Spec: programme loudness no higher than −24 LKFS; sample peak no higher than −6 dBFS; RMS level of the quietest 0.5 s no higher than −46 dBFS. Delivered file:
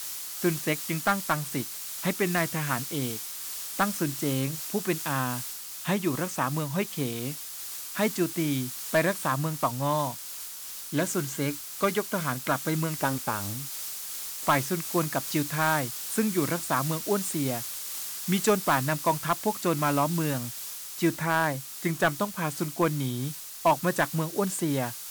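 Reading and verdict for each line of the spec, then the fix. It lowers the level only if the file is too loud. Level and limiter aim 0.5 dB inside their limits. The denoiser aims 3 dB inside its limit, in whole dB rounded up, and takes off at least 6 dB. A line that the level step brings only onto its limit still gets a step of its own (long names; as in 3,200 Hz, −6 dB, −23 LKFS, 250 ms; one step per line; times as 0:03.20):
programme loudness −28.5 LKFS: in spec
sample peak −12.0 dBFS: in spec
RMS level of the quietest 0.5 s −40 dBFS: out of spec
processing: broadband denoise 9 dB, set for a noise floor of −40 dBFS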